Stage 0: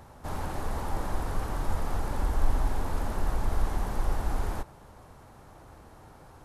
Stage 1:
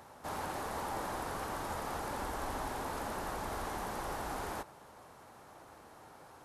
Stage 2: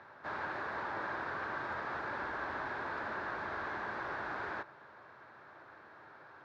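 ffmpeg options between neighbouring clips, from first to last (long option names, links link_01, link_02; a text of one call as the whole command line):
ffmpeg -i in.wav -af "highpass=frequency=410:poles=1" out.wav
ffmpeg -i in.wav -af "highpass=140,equalizer=frequency=180:width_type=q:width=4:gain=-8,equalizer=frequency=260:width_type=q:width=4:gain=-7,equalizer=frequency=480:width_type=q:width=4:gain=-5,equalizer=frequency=780:width_type=q:width=4:gain=-6,equalizer=frequency=1600:width_type=q:width=4:gain=9,equalizer=frequency=3000:width_type=q:width=4:gain=-7,lowpass=frequency=3700:width=0.5412,lowpass=frequency=3700:width=1.3066,volume=1dB" out.wav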